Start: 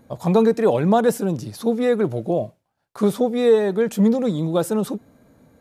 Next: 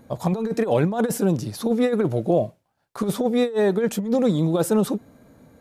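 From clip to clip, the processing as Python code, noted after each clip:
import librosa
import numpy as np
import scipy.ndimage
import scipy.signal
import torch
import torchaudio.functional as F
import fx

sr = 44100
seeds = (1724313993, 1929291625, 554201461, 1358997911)

y = fx.over_compress(x, sr, threshold_db=-19.0, ratio=-0.5)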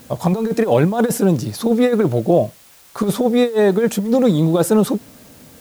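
y = fx.dmg_noise_colour(x, sr, seeds[0], colour='white', level_db=-53.0)
y = y * librosa.db_to_amplitude(5.5)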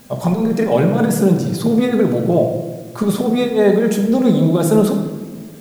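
y = fx.room_shoebox(x, sr, seeds[1], volume_m3=1100.0, walls='mixed', distance_m=1.3)
y = y * librosa.db_to_amplitude(-2.0)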